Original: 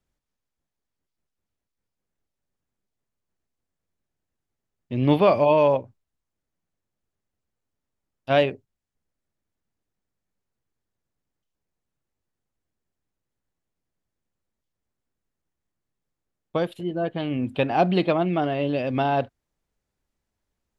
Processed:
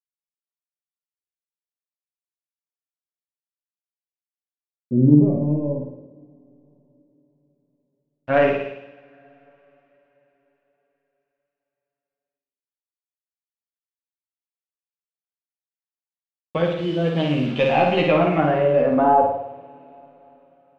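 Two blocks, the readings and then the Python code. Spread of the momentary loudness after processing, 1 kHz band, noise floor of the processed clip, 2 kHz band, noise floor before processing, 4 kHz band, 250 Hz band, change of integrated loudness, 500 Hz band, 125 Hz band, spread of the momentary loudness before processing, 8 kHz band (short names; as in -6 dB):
14 LU, +4.0 dB, under -85 dBFS, +4.5 dB, -84 dBFS, +1.5 dB, +5.5 dB, +3.5 dB, +2.5 dB, +6.0 dB, 10 LU, n/a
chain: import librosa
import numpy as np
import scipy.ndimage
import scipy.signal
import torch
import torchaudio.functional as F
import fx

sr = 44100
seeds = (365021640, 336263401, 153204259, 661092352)

p1 = fx.tracing_dist(x, sr, depth_ms=0.047)
p2 = fx.peak_eq(p1, sr, hz=520.0, db=5.0, octaves=0.23)
p3 = fx.over_compress(p2, sr, threshold_db=-22.0, ratio=-1.0)
p4 = p2 + (p3 * librosa.db_to_amplitude(-1.0))
p5 = fx.quant_dither(p4, sr, seeds[0], bits=6, dither='none')
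p6 = p5 + fx.room_flutter(p5, sr, wall_m=9.3, rt60_s=0.79, dry=0)
p7 = fx.filter_lfo_lowpass(p6, sr, shape='sine', hz=0.13, low_hz=240.0, high_hz=3300.0, q=2.0)
p8 = fx.chorus_voices(p7, sr, voices=2, hz=0.14, base_ms=10, depth_ms=3.2, mix_pct=40)
p9 = fx.rev_double_slope(p8, sr, seeds[1], early_s=0.32, late_s=4.6, knee_db=-19, drr_db=14.5)
y = p9 * librosa.db_to_amplitude(-2.5)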